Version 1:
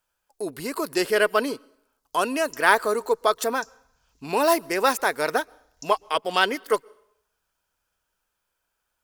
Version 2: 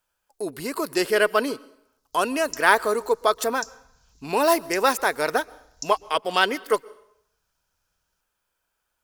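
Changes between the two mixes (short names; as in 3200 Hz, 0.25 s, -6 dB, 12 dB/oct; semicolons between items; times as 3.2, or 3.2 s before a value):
speech: send +6.5 dB; background +8.5 dB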